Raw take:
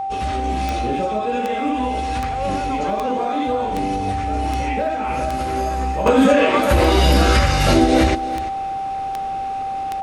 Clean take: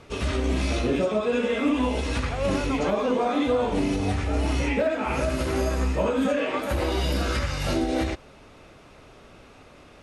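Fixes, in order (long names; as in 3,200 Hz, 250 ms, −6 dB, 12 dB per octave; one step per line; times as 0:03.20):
click removal
notch filter 780 Hz, Q 30
echo removal 343 ms −14.5 dB
level 0 dB, from 0:06.06 −10.5 dB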